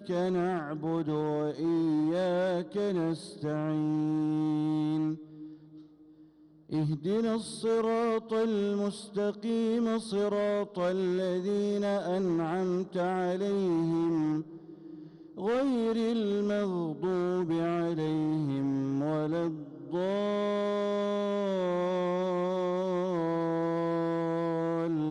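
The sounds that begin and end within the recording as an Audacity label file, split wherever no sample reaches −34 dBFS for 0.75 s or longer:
6.720000	14.410000	sound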